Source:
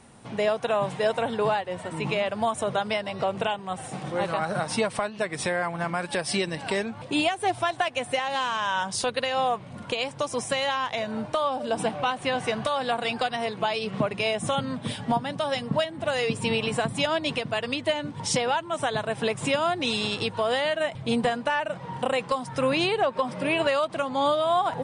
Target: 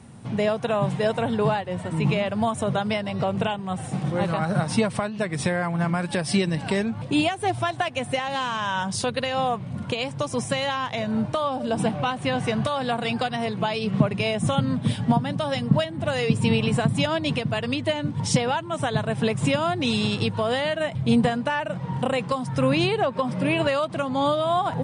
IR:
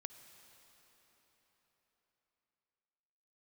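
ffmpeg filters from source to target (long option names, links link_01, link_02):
-af "highpass=83,bass=frequency=250:gain=13,treble=frequency=4000:gain=0"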